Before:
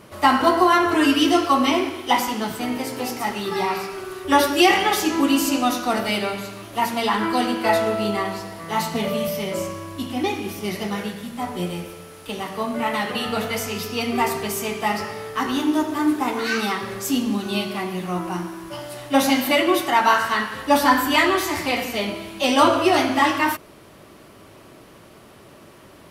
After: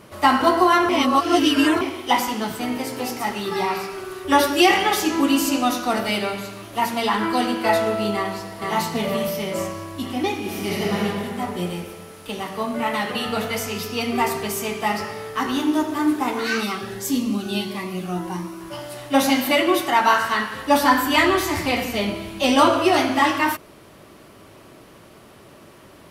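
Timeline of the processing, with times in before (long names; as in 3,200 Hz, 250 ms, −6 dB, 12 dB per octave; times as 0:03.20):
0:00.89–0:01.81: reverse
0:08.14–0:08.59: delay throw 470 ms, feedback 60%, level −3.5 dB
0:10.39–0:11.03: thrown reverb, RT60 2.5 s, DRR −2.5 dB
0:16.63–0:18.61: phaser whose notches keep moving one way rising 1.6 Hz
0:21.17–0:22.60: low-shelf EQ 160 Hz +9.5 dB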